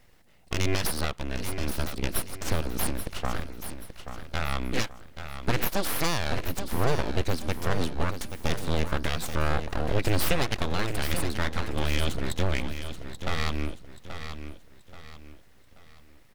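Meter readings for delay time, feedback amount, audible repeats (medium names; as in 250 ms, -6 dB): 831 ms, 37%, 3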